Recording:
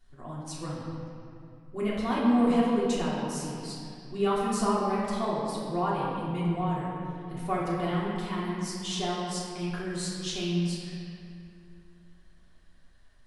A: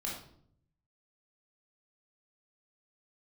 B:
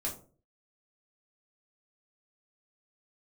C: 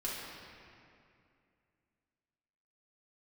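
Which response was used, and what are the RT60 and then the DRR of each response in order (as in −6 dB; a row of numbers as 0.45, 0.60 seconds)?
C; 0.65, 0.40, 2.5 seconds; −4.0, −3.5, −7.5 decibels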